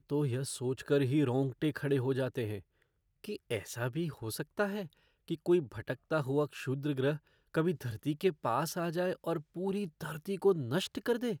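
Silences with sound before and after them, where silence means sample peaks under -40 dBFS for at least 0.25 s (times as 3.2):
2.59–3.24
4.85–5.28
7.17–7.54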